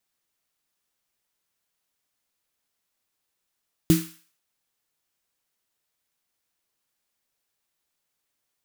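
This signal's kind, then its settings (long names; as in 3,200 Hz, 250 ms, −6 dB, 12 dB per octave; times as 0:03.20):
synth snare length 0.49 s, tones 170 Hz, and 320 Hz, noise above 1,200 Hz, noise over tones −12 dB, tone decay 0.30 s, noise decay 0.50 s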